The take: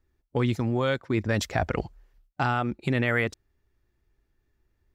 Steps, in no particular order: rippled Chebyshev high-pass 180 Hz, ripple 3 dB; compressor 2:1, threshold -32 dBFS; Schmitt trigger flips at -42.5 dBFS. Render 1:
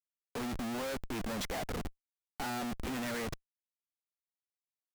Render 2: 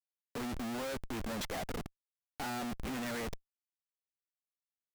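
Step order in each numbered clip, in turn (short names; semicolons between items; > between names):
rippled Chebyshev high-pass > compressor > Schmitt trigger; compressor > rippled Chebyshev high-pass > Schmitt trigger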